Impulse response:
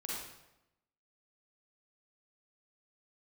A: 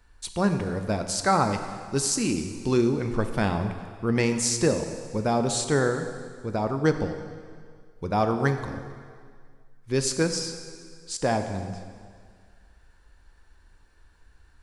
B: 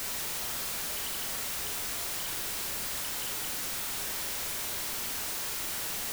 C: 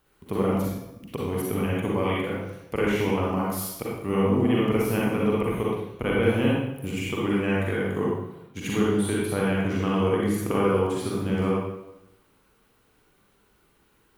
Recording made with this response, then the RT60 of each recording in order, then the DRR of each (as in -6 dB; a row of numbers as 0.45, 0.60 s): C; 2.0, 0.40, 0.90 s; 7.0, 3.5, -5.5 dB